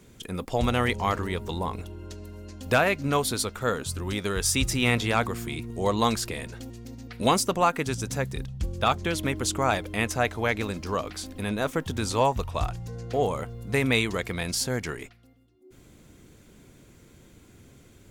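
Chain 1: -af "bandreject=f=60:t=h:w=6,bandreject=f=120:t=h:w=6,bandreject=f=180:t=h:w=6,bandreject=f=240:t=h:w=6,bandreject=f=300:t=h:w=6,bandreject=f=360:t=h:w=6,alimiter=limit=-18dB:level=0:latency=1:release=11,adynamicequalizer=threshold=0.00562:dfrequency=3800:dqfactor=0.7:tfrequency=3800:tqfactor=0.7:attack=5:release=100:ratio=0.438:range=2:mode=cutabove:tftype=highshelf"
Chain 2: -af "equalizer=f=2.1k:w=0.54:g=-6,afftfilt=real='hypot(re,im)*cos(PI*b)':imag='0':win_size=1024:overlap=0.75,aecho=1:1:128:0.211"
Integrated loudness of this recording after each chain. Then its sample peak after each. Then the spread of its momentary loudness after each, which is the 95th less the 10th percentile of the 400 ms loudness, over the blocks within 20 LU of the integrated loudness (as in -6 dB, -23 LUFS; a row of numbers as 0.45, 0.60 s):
-30.5, -32.5 LUFS; -18.0, -7.5 dBFS; 10, 12 LU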